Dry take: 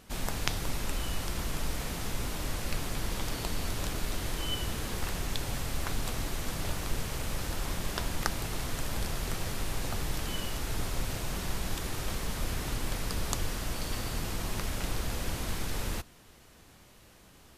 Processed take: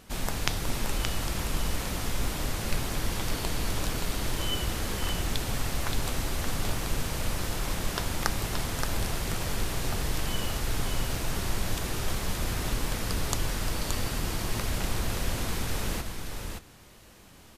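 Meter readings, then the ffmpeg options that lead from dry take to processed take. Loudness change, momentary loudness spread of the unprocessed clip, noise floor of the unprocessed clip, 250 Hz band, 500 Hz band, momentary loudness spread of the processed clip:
+3.5 dB, 2 LU, -56 dBFS, +3.5 dB, +3.5 dB, 2 LU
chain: -af "aecho=1:1:574:0.531,volume=1.33"

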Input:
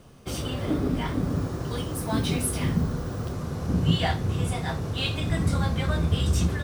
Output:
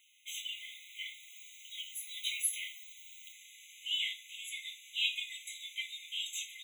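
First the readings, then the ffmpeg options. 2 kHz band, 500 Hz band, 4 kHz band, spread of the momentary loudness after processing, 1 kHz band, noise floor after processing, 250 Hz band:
-5.0 dB, under -40 dB, -1.5 dB, 17 LU, under -40 dB, -56 dBFS, under -40 dB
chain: -af "afftfilt=real='re*eq(mod(floor(b*sr/1024/2000),2),1)':imag='im*eq(mod(floor(b*sr/1024/2000),2),1)':win_size=1024:overlap=0.75,volume=0.891"

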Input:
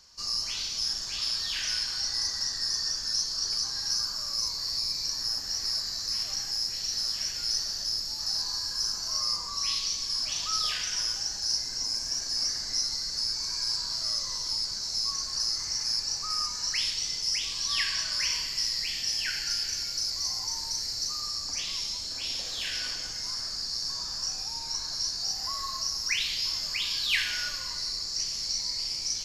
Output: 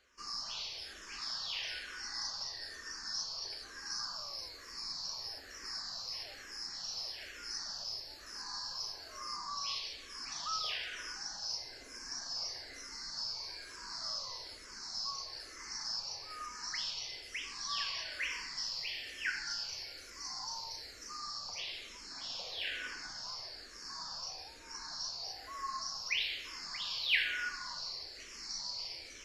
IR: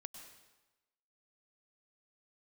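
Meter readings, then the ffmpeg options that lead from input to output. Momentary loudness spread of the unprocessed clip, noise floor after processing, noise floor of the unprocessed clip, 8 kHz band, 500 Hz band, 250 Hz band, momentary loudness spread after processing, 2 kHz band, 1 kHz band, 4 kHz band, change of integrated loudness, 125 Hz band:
4 LU, -52 dBFS, -36 dBFS, -14.5 dB, -3.0 dB, -7.5 dB, 9 LU, -3.0 dB, -2.0 dB, -11.0 dB, -11.0 dB, -12.5 dB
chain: -filter_complex "[0:a]bass=f=250:g=-11,treble=f=4000:g=-15,asplit=2[s0][s1];[s1]afreqshift=-1.1[s2];[s0][s2]amix=inputs=2:normalize=1,volume=1.12"

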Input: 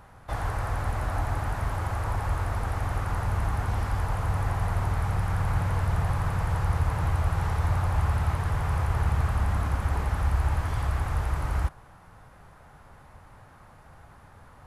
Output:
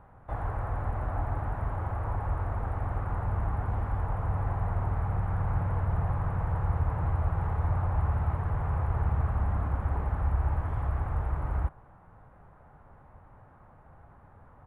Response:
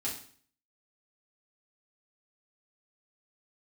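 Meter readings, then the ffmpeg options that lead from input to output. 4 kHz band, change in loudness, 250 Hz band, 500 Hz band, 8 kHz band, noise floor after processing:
under -15 dB, -3.0 dB, -2.5 dB, -2.5 dB, under -20 dB, -56 dBFS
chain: -af "firequalizer=gain_entry='entry(770,0);entry(5000,-28);entry(8700,-20)':delay=0.05:min_phase=1,volume=0.75"

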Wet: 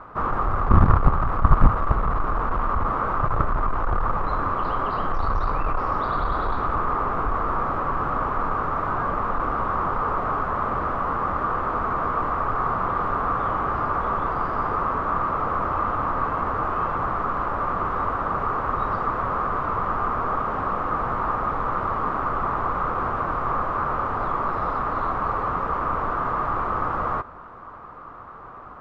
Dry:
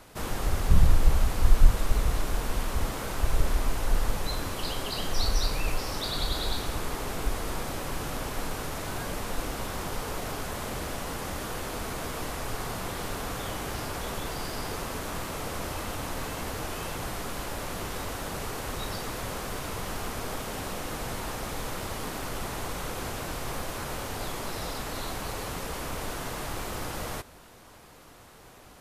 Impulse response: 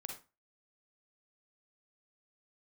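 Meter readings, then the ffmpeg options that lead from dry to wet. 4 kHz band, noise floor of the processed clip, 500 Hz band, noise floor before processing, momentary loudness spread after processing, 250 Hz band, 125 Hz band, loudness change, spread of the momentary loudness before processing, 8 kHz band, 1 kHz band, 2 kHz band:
under -10 dB, -40 dBFS, +6.5 dB, -51 dBFS, 2 LU, +5.5 dB, +5.0 dB, +8.0 dB, 6 LU, under -25 dB, +15.0 dB, +5.5 dB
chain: -af "aeval=exprs='0.596*(cos(1*acos(clip(val(0)/0.596,-1,1)))-cos(1*PI/2))+0.266*(cos(7*acos(clip(val(0)/0.596,-1,1)))-cos(7*PI/2))':c=same,lowpass=f=1200:t=q:w=6.3,volume=0.841"

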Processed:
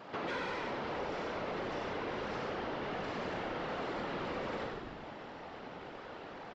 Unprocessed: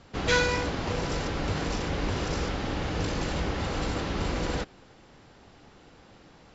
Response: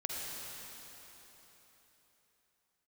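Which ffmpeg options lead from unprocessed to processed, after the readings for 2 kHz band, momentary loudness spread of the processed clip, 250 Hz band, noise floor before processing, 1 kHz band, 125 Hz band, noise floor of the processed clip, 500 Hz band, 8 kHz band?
-9.0 dB, 9 LU, -9.5 dB, -55 dBFS, -4.5 dB, -17.0 dB, -48 dBFS, -6.0 dB, no reading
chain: -filter_complex "[1:a]atrim=start_sample=2205,afade=t=out:st=0.15:d=0.01,atrim=end_sample=7056,asetrate=61740,aresample=44100[s0];[0:a][s0]afir=irnorm=-1:irlink=0,afftfilt=real='hypot(re,im)*cos(2*PI*random(0))':imag='hypot(re,im)*sin(2*PI*random(1))':win_size=512:overlap=0.75,asplit=2[s1][s2];[s2]highpass=f=720:p=1,volume=11.2,asoftclip=type=tanh:threshold=0.0841[s3];[s1][s3]amix=inputs=2:normalize=0,lowpass=f=1100:p=1,volume=0.501,highpass=160,lowpass=4900,asplit=7[s4][s5][s6][s7][s8][s9][s10];[s5]adelay=95,afreqshift=-83,volume=0.596[s11];[s6]adelay=190,afreqshift=-166,volume=0.285[s12];[s7]adelay=285,afreqshift=-249,volume=0.136[s13];[s8]adelay=380,afreqshift=-332,volume=0.0661[s14];[s9]adelay=475,afreqshift=-415,volume=0.0316[s15];[s10]adelay=570,afreqshift=-498,volume=0.0151[s16];[s4][s11][s12][s13][s14][s15][s16]amix=inputs=7:normalize=0,acompressor=threshold=0.00447:ratio=3,volume=2.24"

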